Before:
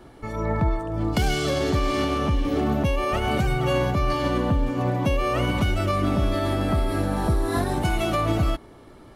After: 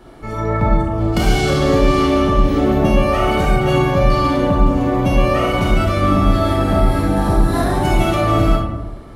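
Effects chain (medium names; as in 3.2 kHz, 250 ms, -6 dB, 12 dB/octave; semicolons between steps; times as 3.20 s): algorithmic reverb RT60 1.2 s, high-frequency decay 0.35×, pre-delay 0 ms, DRR -3 dB; trim +2.5 dB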